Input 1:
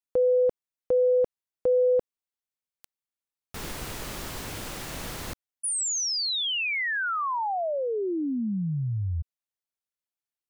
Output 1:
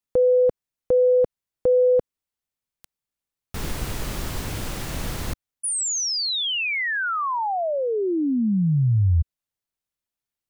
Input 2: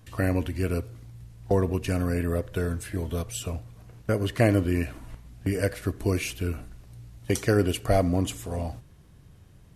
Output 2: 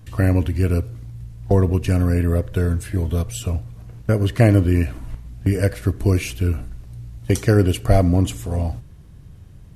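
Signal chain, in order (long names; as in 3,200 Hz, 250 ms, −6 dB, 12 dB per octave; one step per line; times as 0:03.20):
low-shelf EQ 200 Hz +9 dB
level +3 dB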